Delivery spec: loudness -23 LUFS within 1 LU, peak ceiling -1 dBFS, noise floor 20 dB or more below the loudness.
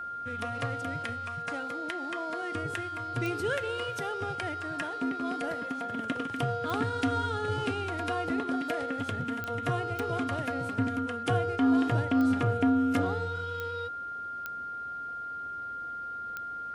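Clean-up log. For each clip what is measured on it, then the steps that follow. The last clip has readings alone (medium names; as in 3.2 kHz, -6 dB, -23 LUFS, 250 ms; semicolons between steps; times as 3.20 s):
clicks found 8; steady tone 1.4 kHz; tone level -35 dBFS; loudness -31.5 LUFS; peak level -15.5 dBFS; loudness target -23.0 LUFS
-> de-click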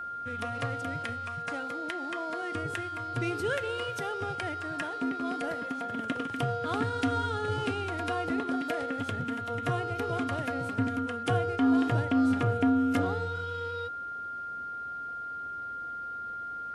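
clicks found 0; steady tone 1.4 kHz; tone level -35 dBFS
-> band-stop 1.4 kHz, Q 30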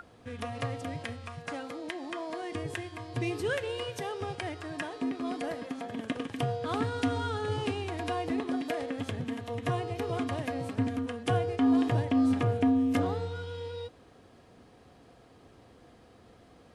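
steady tone not found; loudness -32.5 LUFS; peak level -16.5 dBFS; loudness target -23.0 LUFS
-> trim +9.5 dB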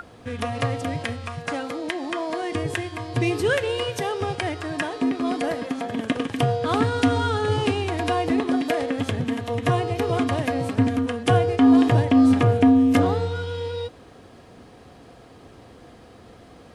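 loudness -23.0 LUFS; peak level -7.0 dBFS; noise floor -48 dBFS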